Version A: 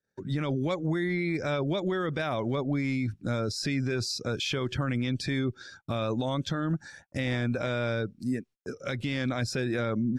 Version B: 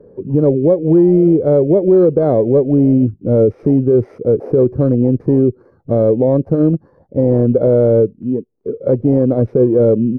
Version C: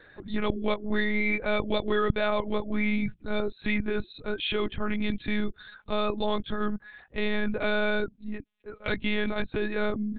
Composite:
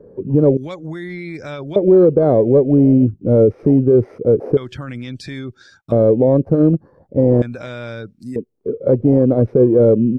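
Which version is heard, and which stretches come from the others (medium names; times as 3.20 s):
B
0.57–1.76 s: from A
4.57–5.92 s: from A
7.42–8.36 s: from A
not used: C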